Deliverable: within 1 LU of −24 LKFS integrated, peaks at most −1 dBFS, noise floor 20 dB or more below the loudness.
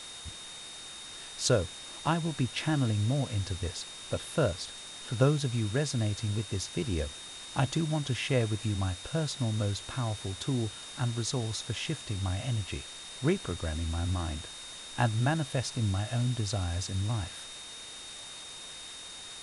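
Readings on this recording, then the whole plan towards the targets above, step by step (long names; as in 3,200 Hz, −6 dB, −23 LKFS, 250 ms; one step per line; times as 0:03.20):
interfering tone 3,700 Hz; level of the tone −45 dBFS; background noise floor −45 dBFS; target noise floor −53 dBFS; integrated loudness −32.5 LKFS; sample peak −10.5 dBFS; target loudness −24.0 LKFS
→ notch filter 3,700 Hz, Q 30
broadband denoise 8 dB, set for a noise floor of −45 dBFS
level +8.5 dB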